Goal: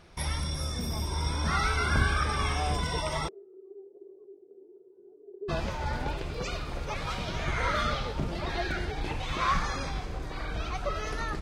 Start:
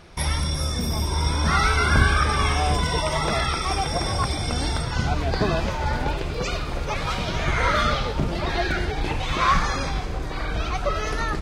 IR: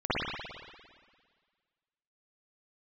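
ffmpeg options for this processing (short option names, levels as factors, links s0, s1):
-filter_complex "[0:a]asplit=3[s0][s1][s2];[s0]afade=t=out:st=3.27:d=0.02[s3];[s1]asuperpass=centerf=390:order=4:qfactor=7.6,afade=t=in:st=3.27:d=0.02,afade=t=out:st=5.48:d=0.02[s4];[s2]afade=t=in:st=5.48:d=0.02[s5];[s3][s4][s5]amix=inputs=3:normalize=0,volume=0.422"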